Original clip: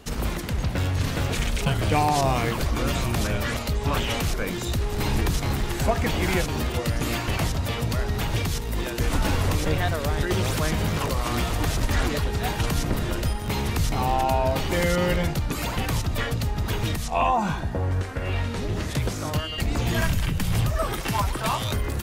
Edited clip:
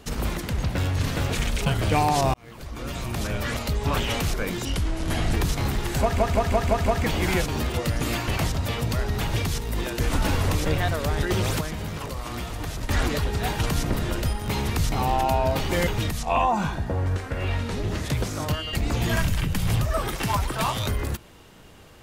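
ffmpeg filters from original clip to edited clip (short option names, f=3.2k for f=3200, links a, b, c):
-filter_complex "[0:a]asplit=12[a][b][c][d][e][f][g][h][i][j][k][l];[a]atrim=end=2.34,asetpts=PTS-STARTPTS,afade=t=out:st=2.336:d=0.004:c=hsin[m];[b]atrim=start=2.34:end=4.654,asetpts=PTS-STARTPTS,afade=t=in:d=1.31[n];[c]atrim=start=4.65:end=5.18,asetpts=PTS-STARTPTS,asetrate=34398,aresample=44100,atrim=end_sample=29965,asetpts=PTS-STARTPTS[o];[d]atrim=start=5.176:end=6.032[p];[e]atrim=start=5.858:end=6.032[q];[f]atrim=start=5.858:end=6.032[r];[g]atrim=start=5.858:end=6.032[s];[h]atrim=start=5.858:end=6.032[t];[i]atrim=start=5.858:end=10.612[u];[j]atrim=start=10.608:end=11.892,asetpts=PTS-STARTPTS,volume=-7dB[v];[k]atrim=start=11.888:end=14.872[w];[l]atrim=start=16.718[x];[m][n]concat=n=2:v=0:a=1[y];[y][o]acrossfade=d=0.004:c1=hsin:c2=hsin[z];[z][p]acrossfade=d=0.004:c1=hsin:c2=hsin[aa];[aa][q]acrossfade=d=0.004:c1=hsin:c2=hsin[ab];[ab][r]acrossfade=d=0.004:c1=hsin:c2=hsin[ac];[ac][s]acrossfade=d=0.004:c1=hsin:c2=hsin[ad];[ad][t]acrossfade=d=0.004:c1=hsin:c2=hsin[ae];[ae][u]acrossfade=d=0.004:c1=hsin:c2=hsin[af];[af][v]acrossfade=d=0.004:c1=hsin:c2=hsin[ag];[ag][w]acrossfade=d=0.004:c1=hsin:c2=hsin[ah];[ah][x]acrossfade=d=0.004:c1=hsin:c2=hsin"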